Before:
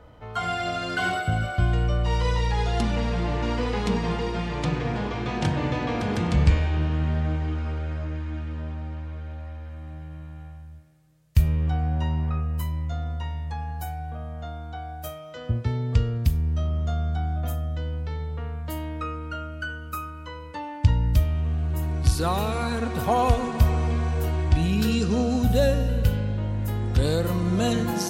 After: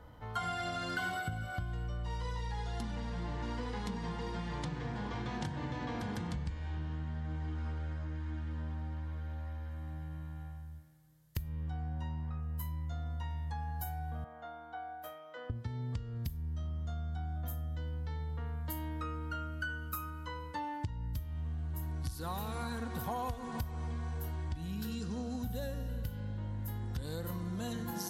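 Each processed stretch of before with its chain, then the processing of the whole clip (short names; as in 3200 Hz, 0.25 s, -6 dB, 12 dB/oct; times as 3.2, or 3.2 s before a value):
14.24–15.5 HPF 53 Hz + three-band isolator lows -24 dB, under 310 Hz, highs -16 dB, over 2800 Hz
whole clip: thirty-one-band EQ 400 Hz -7 dB, 630 Hz -7 dB, 1250 Hz -8 dB, 2500 Hz -8 dB, 12500 Hz +11 dB; compressor 10:1, threshold -31 dBFS; bell 1200 Hz +5 dB 1 oct; gain -4 dB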